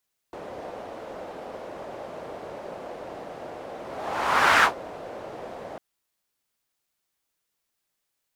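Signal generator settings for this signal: whoosh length 5.45 s, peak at 4.30 s, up 0.89 s, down 0.12 s, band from 580 Hz, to 1.4 kHz, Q 2.1, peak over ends 21 dB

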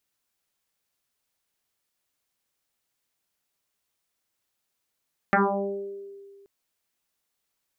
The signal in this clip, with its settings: FM tone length 1.13 s, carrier 397 Hz, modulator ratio 0.5, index 8.4, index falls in 1.04 s exponential, decay 1.95 s, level -16 dB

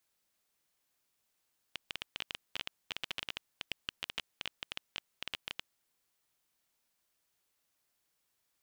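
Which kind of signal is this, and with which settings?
random clicks 13 per s -19 dBFS 4.10 s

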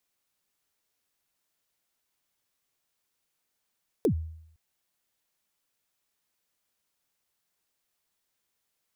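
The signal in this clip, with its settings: kick drum length 0.51 s, from 510 Hz, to 80 Hz, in 90 ms, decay 0.72 s, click on, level -18 dB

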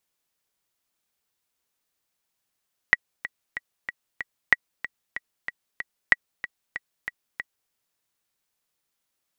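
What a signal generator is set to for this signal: metronome 188 bpm, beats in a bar 5, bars 3, 1.93 kHz, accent 15 dB -2 dBFS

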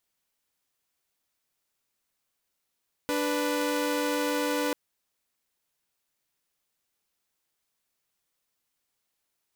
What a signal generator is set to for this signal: chord D4/B4 saw, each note -26 dBFS 1.64 s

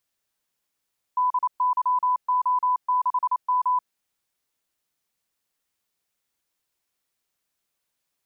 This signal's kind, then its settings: Morse "DYO6M" 28 wpm 999 Hz -18.5 dBFS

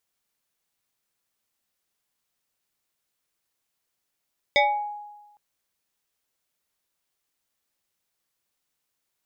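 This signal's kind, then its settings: FM tone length 0.81 s, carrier 831 Hz, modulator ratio 1.7, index 2.2, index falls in 0.51 s exponential, decay 1.17 s, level -14 dB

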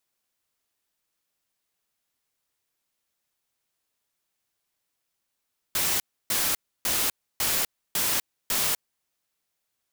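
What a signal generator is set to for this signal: noise bursts white, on 0.25 s, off 0.30 s, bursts 6, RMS -25 dBFS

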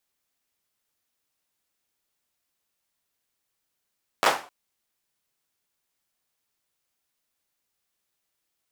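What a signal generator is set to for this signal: hand clap length 0.26 s, apart 10 ms, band 820 Hz, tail 0.35 s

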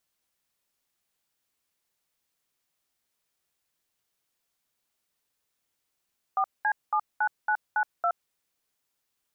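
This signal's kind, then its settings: DTMF "4C79992", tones 71 ms, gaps 207 ms, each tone -24.5 dBFS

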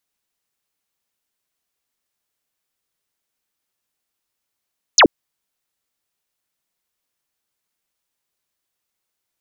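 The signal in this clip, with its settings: laser zap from 7.4 kHz, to 230 Hz, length 0.08 s sine, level -6 dB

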